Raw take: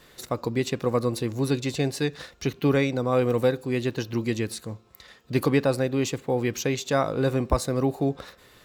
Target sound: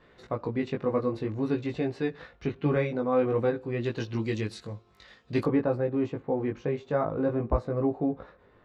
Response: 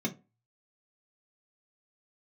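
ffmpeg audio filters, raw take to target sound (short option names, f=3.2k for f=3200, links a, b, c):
-af "asetnsamples=n=441:p=0,asendcmd='3.84 lowpass f 4700;5.44 lowpass f 1300',lowpass=2.1k,flanger=delay=17.5:depth=2.6:speed=0.52"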